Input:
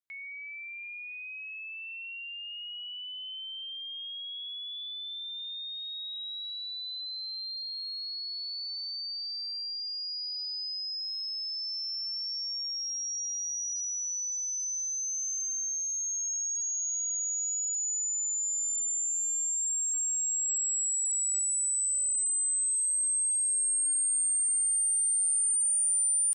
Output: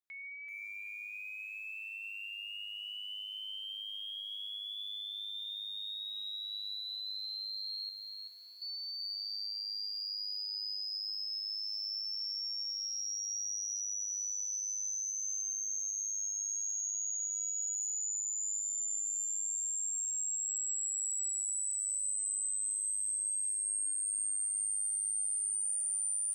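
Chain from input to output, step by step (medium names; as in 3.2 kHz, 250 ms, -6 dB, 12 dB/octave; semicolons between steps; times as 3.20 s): 7.89–8.62 s: distance through air 440 m; compression 2.5:1, threshold -33 dBFS, peak gain reduction 5 dB; on a send at -20.5 dB: reverberation RT60 1.3 s, pre-delay 3 ms; on the sum: bit-crushed delay 383 ms, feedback 35%, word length 10-bit, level -4.5 dB; trim -4 dB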